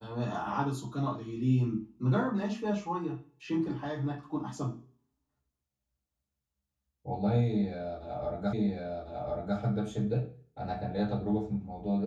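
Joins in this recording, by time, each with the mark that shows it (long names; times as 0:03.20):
0:08.53: the same again, the last 1.05 s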